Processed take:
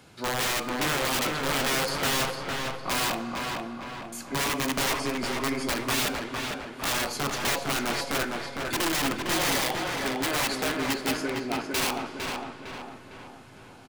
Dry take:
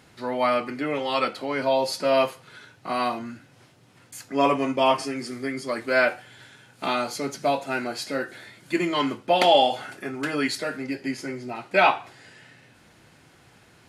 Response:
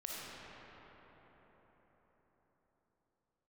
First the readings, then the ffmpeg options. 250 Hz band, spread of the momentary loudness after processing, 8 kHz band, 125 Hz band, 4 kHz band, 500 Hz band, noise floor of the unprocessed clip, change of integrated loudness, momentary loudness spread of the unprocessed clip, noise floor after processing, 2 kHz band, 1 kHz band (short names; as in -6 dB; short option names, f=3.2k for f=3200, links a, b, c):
-2.0 dB, 10 LU, +10.5 dB, +3.5 dB, +1.5 dB, -7.5 dB, -56 dBFS, -3.0 dB, 13 LU, -48 dBFS, 0.0 dB, -5.5 dB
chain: -filter_complex "[0:a]bandreject=f=1.9k:w=6.7,alimiter=limit=-12dB:level=0:latency=1:release=400,acrossover=split=160|1700[a][b][c];[a]acompressor=threshold=-53dB:ratio=4[d];[b]acompressor=threshold=-23dB:ratio=4[e];[c]acompressor=threshold=-34dB:ratio=4[f];[d][e][f]amix=inputs=3:normalize=0,aeval=exprs='(mod(14.1*val(0)+1,2)-1)/14.1':c=same,asplit=2[g][h];[h]adelay=456,lowpass=f=3.1k:p=1,volume=-3dB,asplit=2[i][j];[j]adelay=456,lowpass=f=3.1k:p=1,volume=0.52,asplit=2[k][l];[l]adelay=456,lowpass=f=3.1k:p=1,volume=0.52,asplit=2[m][n];[n]adelay=456,lowpass=f=3.1k:p=1,volume=0.52,asplit=2[o][p];[p]adelay=456,lowpass=f=3.1k:p=1,volume=0.52,asplit=2[q][r];[r]adelay=456,lowpass=f=3.1k:p=1,volume=0.52,asplit=2[s][t];[t]adelay=456,lowpass=f=3.1k:p=1,volume=0.52[u];[g][i][k][m][o][q][s][u]amix=inputs=8:normalize=0,asplit=2[v][w];[1:a]atrim=start_sample=2205,asetrate=79380,aresample=44100[x];[w][x]afir=irnorm=-1:irlink=0,volume=-7.5dB[y];[v][y]amix=inputs=2:normalize=0"